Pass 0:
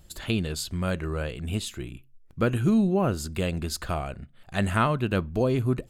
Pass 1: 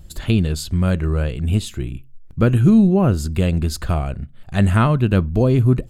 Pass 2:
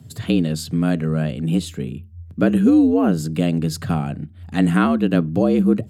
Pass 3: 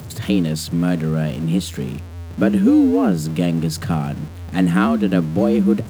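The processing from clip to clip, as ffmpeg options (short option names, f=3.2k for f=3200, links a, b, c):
-af "lowshelf=f=250:g=11,volume=3dB"
-af "bandreject=f=790:w=13,afreqshift=79,volume=-1.5dB"
-af "aeval=exprs='val(0)+0.5*0.0282*sgn(val(0))':c=same"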